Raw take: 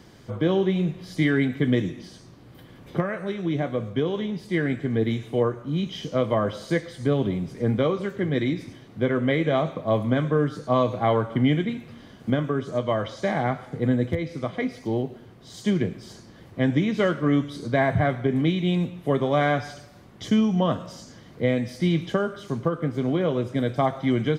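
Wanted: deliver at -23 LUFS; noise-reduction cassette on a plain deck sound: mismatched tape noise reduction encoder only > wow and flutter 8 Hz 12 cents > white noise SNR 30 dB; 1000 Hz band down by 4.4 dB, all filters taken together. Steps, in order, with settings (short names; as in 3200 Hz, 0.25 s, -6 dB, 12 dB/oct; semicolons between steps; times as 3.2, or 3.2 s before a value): bell 1000 Hz -6.5 dB; mismatched tape noise reduction encoder only; wow and flutter 8 Hz 12 cents; white noise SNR 30 dB; gain +2.5 dB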